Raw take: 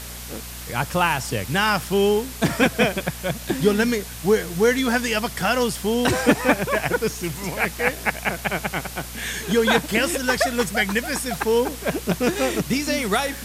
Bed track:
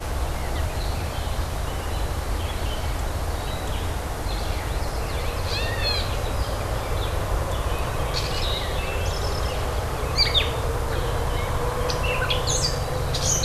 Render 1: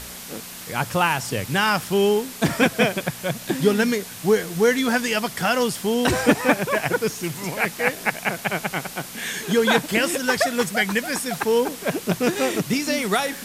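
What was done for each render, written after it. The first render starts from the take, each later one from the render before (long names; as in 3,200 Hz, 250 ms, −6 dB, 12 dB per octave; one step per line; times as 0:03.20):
hum removal 60 Hz, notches 2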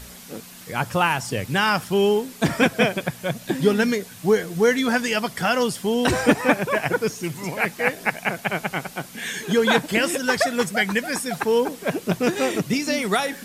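broadband denoise 7 dB, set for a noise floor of −37 dBFS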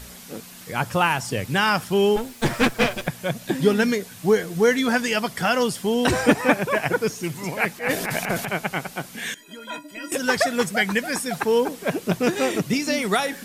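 0:02.16–0:03.08: lower of the sound and its delayed copy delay 8.4 ms
0:07.72–0:08.49: transient designer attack −9 dB, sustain +11 dB
0:09.34–0:10.12: stiff-string resonator 290 Hz, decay 0.21 s, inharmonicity 0.03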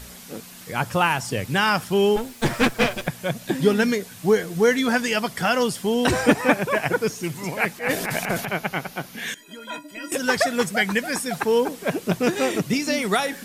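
0:08.41–0:09.28: parametric band 8,100 Hz −10.5 dB 0.31 octaves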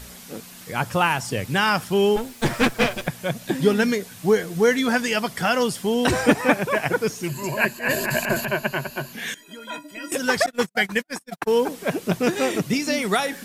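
0:07.28–0:09.13: EQ curve with evenly spaced ripples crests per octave 1.4, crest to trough 13 dB
0:10.46–0:11.58: noise gate −25 dBFS, range −55 dB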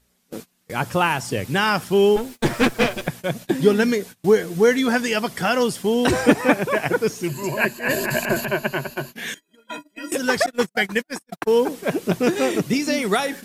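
parametric band 350 Hz +4 dB 0.99 octaves
noise gate −34 dBFS, range −25 dB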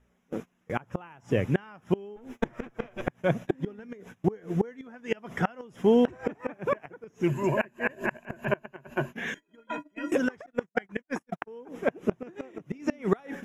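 gate with flip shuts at −11 dBFS, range −27 dB
moving average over 10 samples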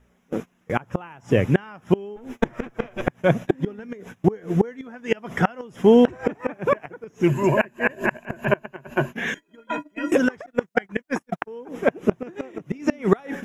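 level +7 dB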